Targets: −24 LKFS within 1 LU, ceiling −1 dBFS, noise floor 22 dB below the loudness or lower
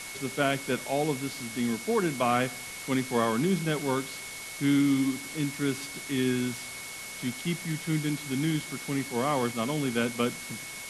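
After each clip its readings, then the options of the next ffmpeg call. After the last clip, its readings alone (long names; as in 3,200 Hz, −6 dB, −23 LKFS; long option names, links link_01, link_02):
interfering tone 2,200 Hz; level of the tone −42 dBFS; background noise floor −40 dBFS; target noise floor −52 dBFS; integrated loudness −29.5 LKFS; sample peak −12.0 dBFS; target loudness −24.0 LKFS
→ -af "bandreject=frequency=2200:width=30"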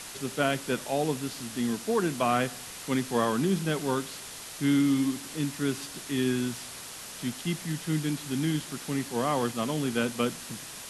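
interfering tone none found; background noise floor −42 dBFS; target noise floor −52 dBFS
→ -af "afftdn=noise_reduction=10:noise_floor=-42"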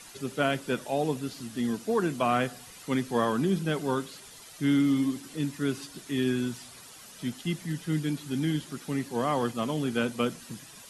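background noise floor −49 dBFS; target noise floor −52 dBFS
→ -af "afftdn=noise_reduction=6:noise_floor=-49"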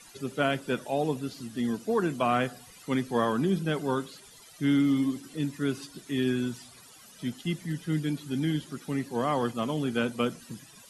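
background noise floor −52 dBFS; integrated loudness −29.5 LKFS; sample peak −12.0 dBFS; target loudness −24.0 LKFS
→ -af "volume=5.5dB"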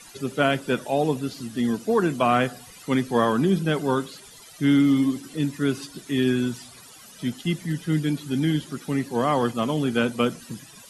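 integrated loudness −24.0 LKFS; sample peak −6.5 dBFS; background noise floor −47 dBFS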